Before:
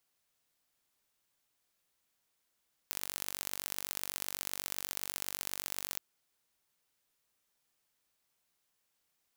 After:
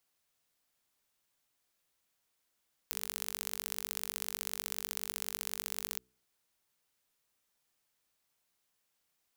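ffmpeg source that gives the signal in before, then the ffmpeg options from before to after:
-f lavfi -i "aevalsrc='0.422*eq(mod(n,919),0)*(0.5+0.5*eq(mod(n,2757),0))':duration=3.08:sample_rate=44100"
-af "bandreject=frequency=62.36:width_type=h:width=4,bandreject=frequency=124.72:width_type=h:width=4,bandreject=frequency=187.08:width_type=h:width=4,bandreject=frequency=249.44:width_type=h:width=4,bandreject=frequency=311.8:width_type=h:width=4,bandreject=frequency=374.16:width_type=h:width=4,bandreject=frequency=436.52:width_type=h:width=4"

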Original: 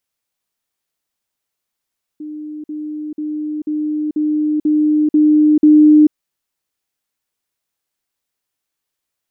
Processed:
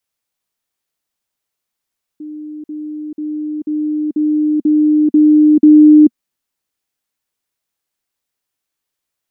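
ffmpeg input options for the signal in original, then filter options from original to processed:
-f lavfi -i "aevalsrc='pow(10,(-25.5+3*floor(t/0.49))/20)*sin(2*PI*303*t)*clip(min(mod(t,0.49),0.44-mod(t,0.49))/0.005,0,1)':duration=3.92:sample_rate=44100"
-af "adynamicequalizer=threshold=0.0447:dfrequency=240:dqfactor=2.6:tfrequency=240:tqfactor=2.6:attack=5:release=100:ratio=0.375:range=3:mode=boostabove:tftype=bell"

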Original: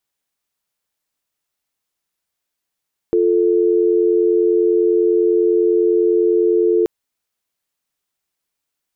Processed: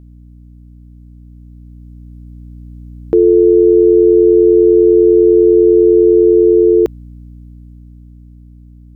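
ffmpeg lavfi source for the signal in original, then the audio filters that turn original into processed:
-f lavfi -i "aevalsrc='0.188*(sin(2*PI*350*t)+sin(2*PI*440*t))':duration=3.73:sample_rate=44100"
-af "aeval=exprs='val(0)+0.0141*(sin(2*PI*60*n/s)+sin(2*PI*2*60*n/s)/2+sin(2*PI*3*60*n/s)/3+sin(2*PI*4*60*n/s)/4+sin(2*PI*5*60*n/s)/5)':channel_layout=same,dynaudnorm=framelen=300:gausssize=13:maxgain=11.5dB"

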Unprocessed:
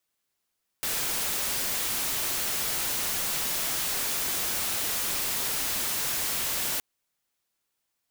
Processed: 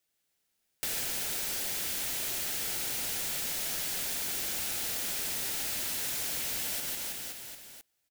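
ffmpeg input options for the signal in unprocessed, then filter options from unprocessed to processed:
-f lavfi -i "anoisesrc=color=white:amplitude=0.0614:duration=5.97:sample_rate=44100:seed=1"
-filter_complex "[0:a]asplit=2[link_01][link_02];[link_02]aecho=0:1:150|322.5|520.9|749|1011:0.631|0.398|0.251|0.158|0.1[link_03];[link_01][link_03]amix=inputs=2:normalize=0,acompressor=threshold=-31dB:ratio=6,equalizer=frequency=1100:width=3.3:gain=-8.5"

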